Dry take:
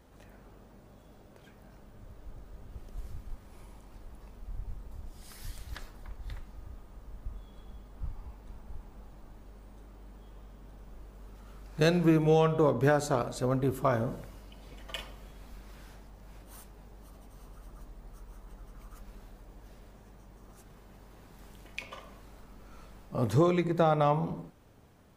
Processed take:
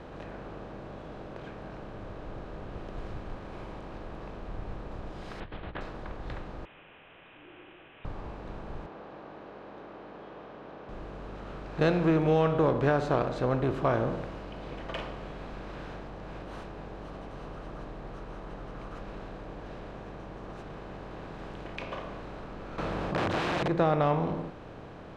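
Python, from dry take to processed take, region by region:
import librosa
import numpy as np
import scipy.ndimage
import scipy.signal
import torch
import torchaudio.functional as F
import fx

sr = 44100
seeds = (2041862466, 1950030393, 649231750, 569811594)

y = fx.chain(x, sr, fx.steep_lowpass(hz=3400.0, slope=48),
    fx.over_compress(threshold_db=-44.0, ratio=-0.5), at=(5.4, 5.81))
y = fx.chain(y, sr, fx.highpass(hz=1200.0, slope=12),
    fx.freq_invert(carrier_hz=3700), at=(6.65, 8.05))
y = fx.chain(y, sr, fx.highpass(hz=350.0, slope=12),
    fx.air_absorb(metres=210.0), at=(8.86, 10.89))
y = fx.chain(y, sr, fx.overflow_wrap(gain_db=27.0),
    fx.highpass(hz=54.0, slope=12),
    fx.env_flatten(amount_pct=70), at=(22.78, 23.68))
y = fx.bin_compress(y, sr, power=0.6)
y = scipy.signal.sosfilt(scipy.signal.butter(2, 3100.0, 'lowpass', fs=sr, output='sos'), y)
y = y * 10.0 ** (-2.5 / 20.0)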